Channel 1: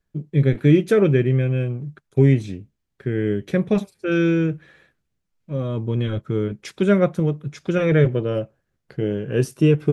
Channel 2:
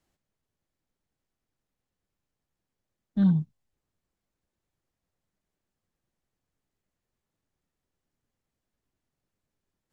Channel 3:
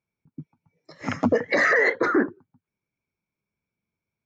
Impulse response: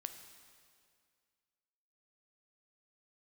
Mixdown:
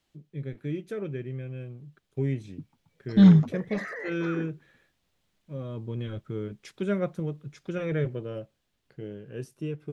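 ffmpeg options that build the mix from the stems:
-filter_complex "[0:a]volume=-18.5dB[link_01];[1:a]equalizer=frequency=3300:width=1.1:gain=9,acontrast=69,volume=-6.5dB[link_02];[2:a]alimiter=limit=-20.5dB:level=0:latency=1:release=163,adelay=2200,volume=-8.5dB,afade=type=out:start_time=3.11:duration=0.28:silence=0.398107[link_03];[link_01][link_02][link_03]amix=inputs=3:normalize=0,dynaudnorm=framelen=470:gausssize=9:maxgain=7.5dB"

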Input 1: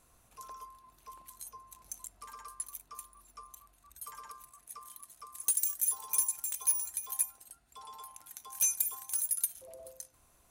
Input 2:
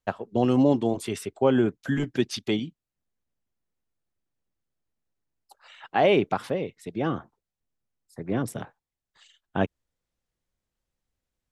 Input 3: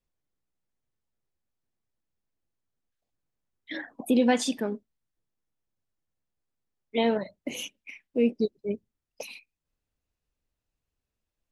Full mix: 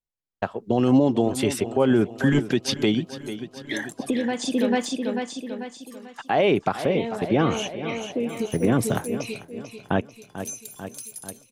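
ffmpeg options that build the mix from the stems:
ffmpeg -i stem1.wav -i stem2.wav -i stem3.wav -filter_complex "[0:a]acompressor=threshold=-37dB:ratio=2,bandpass=frequency=4200:width_type=q:width=1.1:csg=0,adelay=1850,volume=-2dB,asplit=3[link_01][link_02][link_03];[link_01]atrim=end=6.75,asetpts=PTS-STARTPTS,afade=type=out:start_time=6.746:duration=0.004:curve=hsin[link_04];[link_02]atrim=start=6.75:end=8.2,asetpts=PTS-STARTPTS,volume=0[link_05];[link_03]atrim=start=8.2,asetpts=PTS-STARTPTS,afade=type=in:duration=0.004:curve=hsin[link_06];[link_04][link_05][link_06]concat=n=3:v=0:a=1,asplit=2[link_07][link_08];[link_08]volume=-23dB[link_09];[1:a]agate=range=-19dB:threshold=-46dB:ratio=16:detection=peak,adelay=350,volume=3dB,asplit=2[link_10][link_11];[link_11]volume=-18dB[link_12];[2:a]lowpass=frequency=8500:width=0.5412,lowpass=frequency=8500:width=1.3066,volume=-2dB,asplit=2[link_13][link_14];[link_14]volume=-8.5dB[link_15];[link_07][link_13]amix=inputs=2:normalize=0,agate=range=-9dB:threshold=-57dB:ratio=16:detection=peak,acompressor=threshold=-33dB:ratio=6,volume=0dB[link_16];[link_09][link_12][link_15]amix=inputs=3:normalize=0,aecho=0:1:442|884|1326|1768|2210|2652|3094|3536:1|0.52|0.27|0.141|0.0731|0.038|0.0198|0.0103[link_17];[link_10][link_16][link_17]amix=inputs=3:normalize=0,dynaudnorm=framelen=250:gausssize=5:maxgain=10dB,alimiter=limit=-10dB:level=0:latency=1:release=188" out.wav

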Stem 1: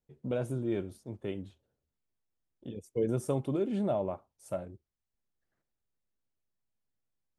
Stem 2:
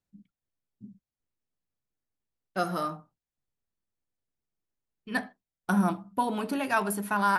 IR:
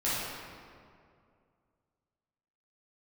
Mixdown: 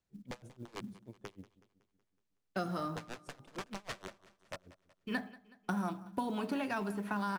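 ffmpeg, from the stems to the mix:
-filter_complex "[0:a]aeval=exprs='(mod(20*val(0)+1,2)-1)/20':channel_layout=same,aeval=exprs='val(0)*pow(10,-30*(0.5-0.5*cos(2*PI*6.4*n/s))/20)':channel_layout=same,volume=-7dB,asplit=2[link_01][link_02];[link_02]volume=-18.5dB[link_03];[1:a]acrossover=split=360|3200[link_04][link_05][link_06];[link_04]acompressor=threshold=-39dB:ratio=4[link_07];[link_05]acompressor=threshold=-40dB:ratio=4[link_08];[link_06]acompressor=threshold=-54dB:ratio=4[link_09];[link_07][link_08][link_09]amix=inputs=3:normalize=0,volume=1.5dB,asplit=2[link_10][link_11];[link_11]volume=-20dB[link_12];[link_03][link_12]amix=inputs=2:normalize=0,aecho=0:1:186|372|558|744|930|1116|1302:1|0.51|0.26|0.133|0.0677|0.0345|0.0176[link_13];[link_01][link_10][link_13]amix=inputs=3:normalize=0,lowpass=7600,acrusher=bits=8:mode=log:mix=0:aa=0.000001"

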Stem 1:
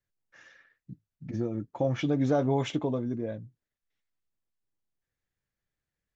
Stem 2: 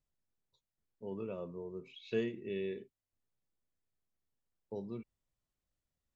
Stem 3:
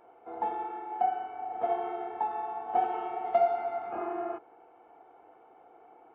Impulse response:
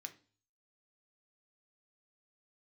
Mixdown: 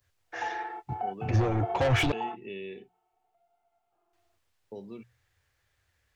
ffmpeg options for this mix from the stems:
-filter_complex "[0:a]adynamicequalizer=threshold=0.00251:dfrequency=2200:dqfactor=1.5:tfrequency=2200:tqfactor=1.5:attack=5:release=100:ratio=0.375:range=2.5:mode=boostabove:tftype=bell,asplit=2[link_01][link_02];[link_02]highpass=frequency=720:poles=1,volume=28dB,asoftclip=type=tanh:threshold=-14dB[link_03];[link_01][link_03]amix=inputs=2:normalize=0,lowpass=frequency=4600:poles=1,volume=-6dB,lowshelf=frequency=130:width_type=q:width=3:gain=13,volume=-4dB,asplit=3[link_04][link_05][link_06];[link_04]atrim=end=2.12,asetpts=PTS-STARTPTS,afade=type=out:start_time=2.116:duration=0.004:curve=hsin[link_07];[link_05]atrim=start=2.12:end=4.13,asetpts=PTS-STARTPTS,volume=0[link_08];[link_06]atrim=start=4.13,asetpts=PTS-STARTPTS,afade=type=in:duration=0.004:curve=hsin[link_09];[link_07][link_08][link_09]concat=n=3:v=0:a=1,asplit=2[link_10][link_11];[1:a]equalizer=frequency=2800:width=2.6:gain=9,bandreject=frequency=60:width_type=h:width=6,bandreject=frequency=120:width_type=h:width=6,bandreject=frequency=180:width_type=h:width=6,acrossover=split=180|2000[link_12][link_13][link_14];[link_12]acompressor=threshold=-58dB:ratio=4[link_15];[link_13]acompressor=threshold=-39dB:ratio=4[link_16];[link_14]acompressor=threshold=-48dB:ratio=4[link_17];[link_15][link_16][link_17]amix=inputs=3:normalize=0,volume=1.5dB[link_18];[2:a]equalizer=frequency=160:width_type=o:width=2.1:gain=-7.5,alimiter=level_in=0.5dB:limit=-24dB:level=0:latency=1:release=132,volume=-0.5dB,volume=0dB[link_19];[link_11]apad=whole_len=270879[link_20];[link_19][link_20]sidechaingate=range=-40dB:threshold=-55dB:ratio=16:detection=peak[link_21];[link_10][link_18][link_21]amix=inputs=3:normalize=0"

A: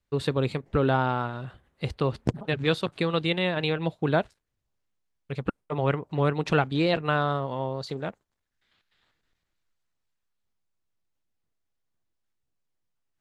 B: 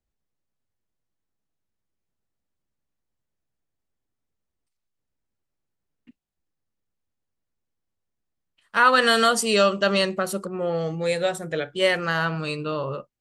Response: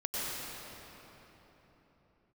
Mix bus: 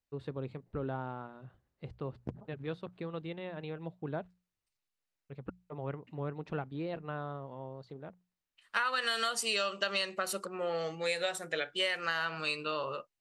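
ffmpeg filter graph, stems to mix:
-filter_complex "[0:a]lowpass=frequency=1200:poles=1,bandreject=frequency=60:width_type=h:width=6,bandreject=frequency=120:width_type=h:width=6,bandreject=frequency=180:width_type=h:width=6,volume=-13dB[link_01];[1:a]highpass=frequency=680:poles=1,equalizer=frequency=3000:width_type=o:width=1.8:gain=5.5,bandreject=frequency=3300:width=17,volume=-4dB[link_02];[link_01][link_02]amix=inputs=2:normalize=0,acompressor=threshold=-28dB:ratio=10"

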